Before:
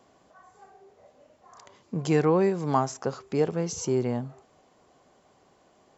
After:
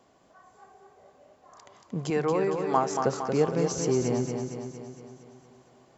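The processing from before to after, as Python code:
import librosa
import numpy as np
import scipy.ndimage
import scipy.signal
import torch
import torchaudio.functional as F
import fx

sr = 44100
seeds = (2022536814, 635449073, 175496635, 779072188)

y = fx.bass_treble(x, sr, bass_db=-11, treble_db=-5, at=(2.1, 2.91))
y = fx.rider(y, sr, range_db=10, speed_s=0.5)
y = fx.echo_feedback(y, sr, ms=230, feedback_pct=57, wet_db=-5.5)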